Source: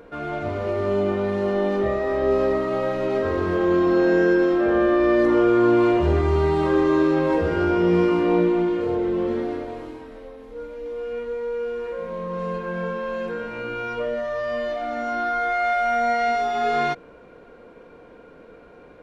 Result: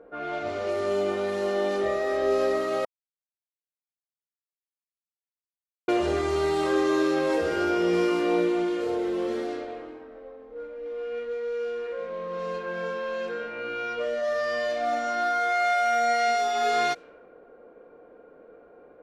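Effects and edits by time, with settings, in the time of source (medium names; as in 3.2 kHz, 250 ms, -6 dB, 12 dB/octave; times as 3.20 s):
2.85–5.88 s: mute
14.17–14.90 s: reverb throw, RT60 2 s, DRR 2.5 dB
whole clip: band-stop 970 Hz, Q 6.2; level-controlled noise filter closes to 870 Hz, open at -20 dBFS; tone controls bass -14 dB, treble +12 dB; trim -1.5 dB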